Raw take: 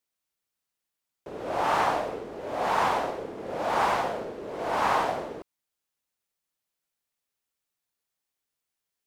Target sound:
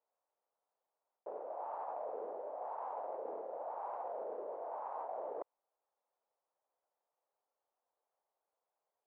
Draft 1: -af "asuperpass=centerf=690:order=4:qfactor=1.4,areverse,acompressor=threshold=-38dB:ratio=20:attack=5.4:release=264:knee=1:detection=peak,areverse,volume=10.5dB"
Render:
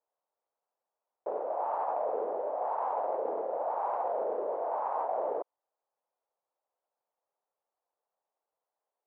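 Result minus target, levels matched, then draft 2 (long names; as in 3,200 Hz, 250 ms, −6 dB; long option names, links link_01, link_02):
downward compressor: peak gain reduction −10.5 dB
-af "asuperpass=centerf=690:order=4:qfactor=1.4,areverse,acompressor=threshold=-49dB:ratio=20:attack=5.4:release=264:knee=1:detection=peak,areverse,volume=10.5dB"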